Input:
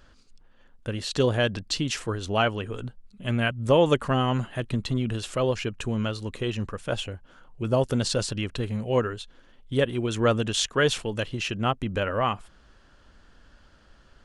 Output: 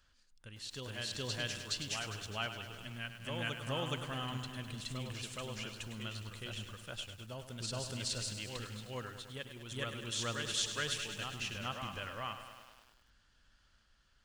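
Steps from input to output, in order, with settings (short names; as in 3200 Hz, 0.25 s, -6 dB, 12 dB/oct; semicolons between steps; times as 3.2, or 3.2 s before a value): passive tone stack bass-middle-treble 5-5-5; on a send: reverse echo 0.42 s -4 dB; on the sum: lo-fi delay 0.102 s, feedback 80%, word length 9-bit, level -9.5 dB; gain -2 dB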